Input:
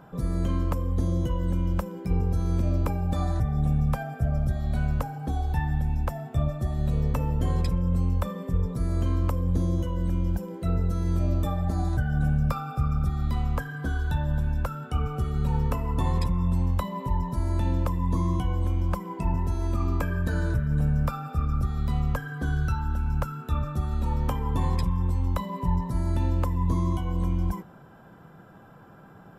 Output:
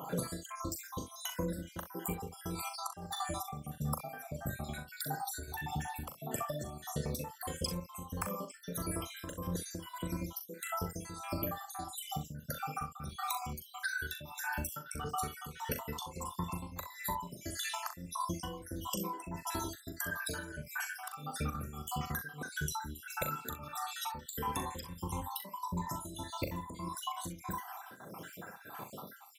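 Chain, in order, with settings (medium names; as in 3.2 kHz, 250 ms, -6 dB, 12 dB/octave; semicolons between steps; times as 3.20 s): random holes in the spectrogram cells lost 66%; high-pass 62 Hz; RIAA curve recording; compression 12:1, threshold -46 dBFS, peak gain reduction 19.5 dB; tremolo triangle 1.6 Hz, depth 75%; on a send: early reflections 40 ms -8 dB, 64 ms -13.5 dB; on the sum: trim +13.5 dB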